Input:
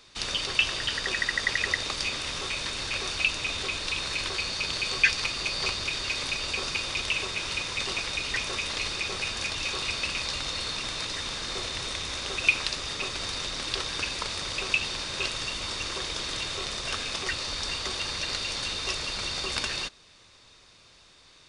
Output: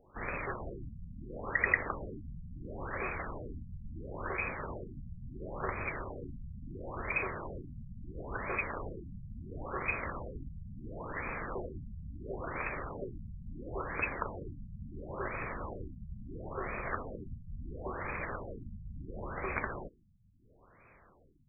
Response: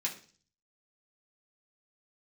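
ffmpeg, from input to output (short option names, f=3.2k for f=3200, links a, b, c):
-filter_complex "[0:a]asplit=3[a][b][c];[b]asetrate=55563,aresample=44100,atempo=0.793701,volume=-16dB[d];[c]asetrate=66075,aresample=44100,atempo=0.66742,volume=-16dB[e];[a][d][e]amix=inputs=3:normalize=0,asplit=2[f][g];[1:a]atrim=start_sample=2205,asetrate=70560,aresample=44100[h];[g][h]afir=irnorm=-1:irlink=0,volume=-13.5dB[i];[f][i]amix=inputs=2:normalize=0,afftfilt=real='re*lt(b*sr/1024,210*pow(2600/210,0.5+0.5*sin(2*PI*0.73*pts/sr)))':imag='im*lt(b*sr/1024,210*pow(2600/210,0.5+0.5*sin(2*PI*0.73*pts/sr)))':win_size=1024:overlap=0.75"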